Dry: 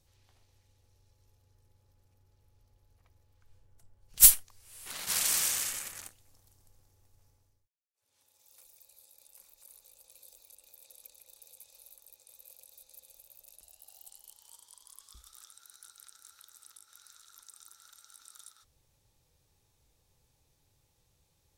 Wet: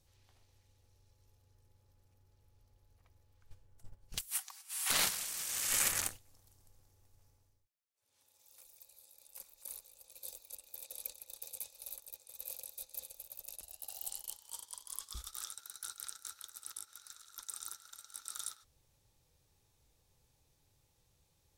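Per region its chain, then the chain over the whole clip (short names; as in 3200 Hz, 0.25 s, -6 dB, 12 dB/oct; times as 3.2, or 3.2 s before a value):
4.27–4.9 Chebyshev high-pass 760 Hz, order 5 + comb 5.3 ms, depth 41%
whole clip: gate -55 dBFS, range -12 dB; negative-ratio compressor -40 dBFS, ratio -1; gain +1.5 dB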